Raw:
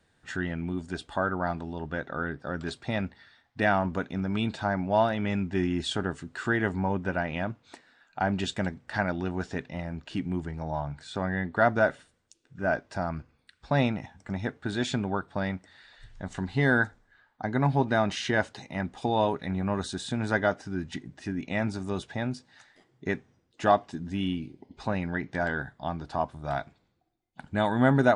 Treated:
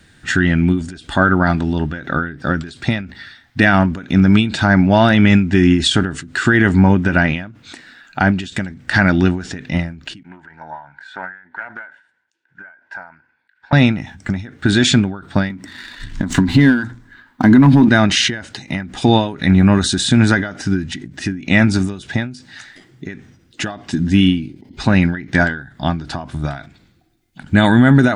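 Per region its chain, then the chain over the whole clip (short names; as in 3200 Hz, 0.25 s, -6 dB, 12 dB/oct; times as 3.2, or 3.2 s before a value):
10.23–13.73 double band-pass 1200 Hz, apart 0.71 oct + Doppler distortion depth 0.15 ms
15.5–17.89 notches 60/120 Hz + sample leveller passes 1 + small resonant body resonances 260/1000 Hz, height 11 dB, ringing for 25 ms
whole clip: band shelf 690 Hz -8.5 dB; maximiser +20.5 dB; ending taper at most 110 dB/s; gain -1 dB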